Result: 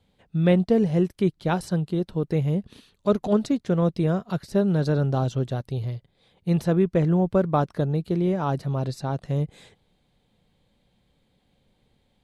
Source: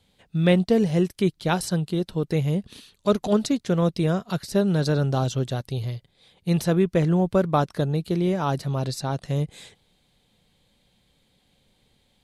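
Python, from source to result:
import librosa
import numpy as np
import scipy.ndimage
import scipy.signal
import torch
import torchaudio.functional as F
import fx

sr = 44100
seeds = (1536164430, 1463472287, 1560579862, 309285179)

y = fx.high_shelf(x, sr, hz=2400.0, db=-10.5)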